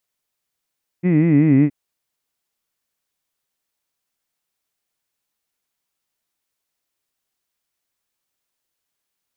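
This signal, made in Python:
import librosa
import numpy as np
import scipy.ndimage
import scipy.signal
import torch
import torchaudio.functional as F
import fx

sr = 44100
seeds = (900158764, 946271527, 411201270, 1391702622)

y = fx.formant_vowel(sr, seeds[0], length_s=0.67, hz=171.0, glide_st=-4.0, vibrato_hz=5.3, vibrato_st=1.4, f1_hz=280.0, f2_hz=2000.0, f3_hz=2500.0)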